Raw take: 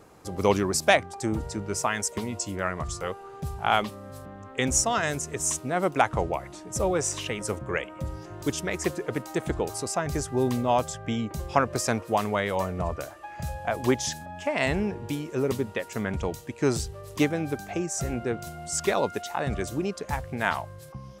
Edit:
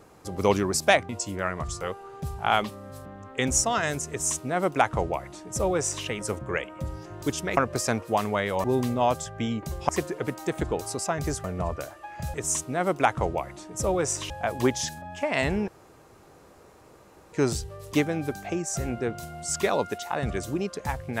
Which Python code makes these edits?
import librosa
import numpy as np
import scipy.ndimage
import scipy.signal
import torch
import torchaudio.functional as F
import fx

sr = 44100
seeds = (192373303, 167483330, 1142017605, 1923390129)

y = fx.edit(x, sr, fx.cut(start_s=1.09, length_s=1.2),
    fx.duplicate(start_s=5.3, length_s=1.96, to_s=13.54),
    fx.swap(start_s=8.77, length_s=1.55, other_s=11.57, other_length_s=1.07),
    fx.room_tone_fill(start_s=14.92, length_s=1.65), tone=tone)